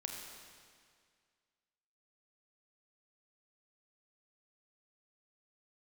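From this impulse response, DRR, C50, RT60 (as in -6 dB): 1.0 dB, 2.0 dB, 2.0 s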